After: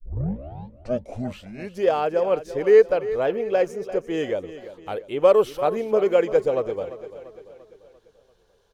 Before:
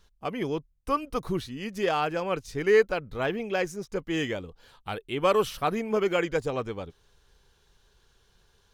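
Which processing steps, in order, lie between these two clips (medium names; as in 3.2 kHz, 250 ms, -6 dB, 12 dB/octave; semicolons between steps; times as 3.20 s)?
tape start-up on the opening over 1.86 s; peaking EQ 530 Hz +14.5 dB 1.2 oct; feedback delay 343 ms, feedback 50%, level -14 dB; trim -4.5 dB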